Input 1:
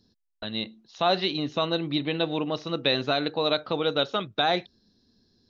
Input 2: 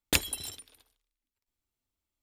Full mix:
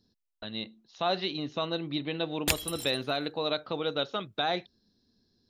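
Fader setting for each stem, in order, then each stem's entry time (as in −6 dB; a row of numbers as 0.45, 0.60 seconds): −5.5, −1.5 decibels; 0.00, 2.35 seconds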